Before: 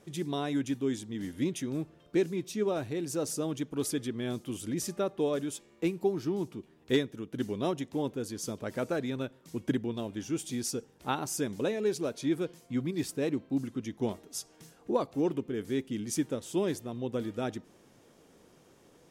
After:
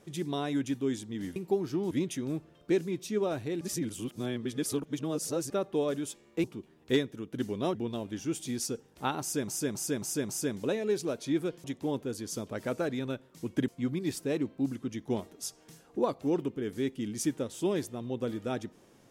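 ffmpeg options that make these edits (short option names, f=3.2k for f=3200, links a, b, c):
-filter_complex "[0:a]asplit=13[a][b][c][d][e][f][g][h][i][j][k][l][m];[a]atrim=end=1.362[n];[b]atrim=start=5.888:end=6.442[o];[c]atrim=start=1.358:end=3.062[p];[d]atrim=start=3.058:end=4.952,asetpts=PTS-STARTPTS,areverse[q];[e]atrim=start=4.948:end=5.892[r];[f]atrim=start=6.438:end=7.752[s];[g]atrim=start=9.788:end=11.522[t];[h]atrim=start=11.248:end=11.522[u];[i]atrim=start=11.248:end=11.522[v];[j]atrim=start=11.248:end=11.522[w];[k]atrim=start=11.248:end=12.602[x];[l]atrim=start=7.748:end=9.792[y];[m]atrim=start=12.598[z];[n][o]acrossfade=d=0.004:c1=hsin:c2=hsin[aa];[aa][p]acrossfade=d=0.004:c1=hsin:c2=hsin[ab];[ab][q]acrossfade=d=0.004:c1=hsin:c2=hsin[ac];[ac][r]acrossfade=d=0.004:c1=hsin:c2=hsin[ad];[ad][s]acrossfade=d=0.004:c1=hsin:c2=hsin[ae];[ae][t]acrossfade=d=0.004:c1=hsin:c2=hsin[af];[af][u]acrossfade=d=0.004:c1=hsin:c2=hsin[ag];[ag][v]acrossfade=d=0.004:c1=hsin:c2=hsin[ah];[ah][w]acrossfade=d=0.004:c1=hsin:c2=hsin[ai];[ai][x]acrossfade=d=0.004:c1=hsin:c2=hsin[aj];[aj][y]acrossfade=d=0.004:c1=hsin:c2=hsin[ak];[ak][z]acrossfade=d=0.004:c1=hsin:c2=hsin"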